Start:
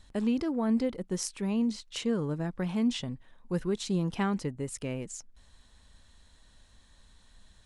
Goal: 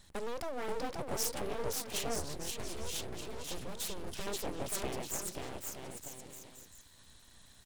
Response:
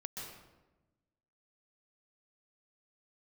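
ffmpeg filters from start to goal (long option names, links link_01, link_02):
-filter_complex "[0:a]asoftclip=type=hard:threshold=-25dB,acompressor=threshold=-32dB:ratio=2.5,aecho=1:1:530|927.5|1226|1449|1617:0.631|0.398|0.251|0.158|0.1,aeval=exprs='abs(val(0))':channel_layout=same,lowshelf=frequency=75:gain=-7,asettb=1/sr,asplit=3[link_01][link_02][link_03];[link_01]atrim=end=2.194[link_04];[link_02]atrim=start=2.19:end=4.27,asetpts=PTS-STARTPTS,afade=type=in:duration=0.004:curve=qsin,afade=type=out:start_time=2.076:duration=0.004:curve=qsin,acrossover=split=150|3000[link_05][link_06][link_07];[link_06]acompressor=threshold=-43dB:ratio=6[link_08];[link_05][link_08][link_07]amix=inputs=3:normalize=0[link_09];[link_03]atrim=start=4.266[link_10];[link_04][link_09]acrossfade=duration=0.004:curve1=hsin:curve2=qsin[link_11];[link_11][link_10]acrossfade=duration=0.004:curve1=qsin:curve2=hsin,highshelf=frequency=7000:gain=8.5"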